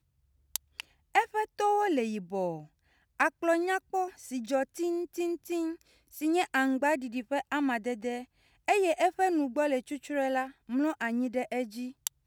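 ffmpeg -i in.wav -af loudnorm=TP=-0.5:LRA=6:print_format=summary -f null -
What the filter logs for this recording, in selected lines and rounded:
Input Integrated:    -31.0 LUFS
Input True Peak:     -11.3 dBTP
Input LRA:             2.0 LU
Input Threshold:     -41.3 LUFS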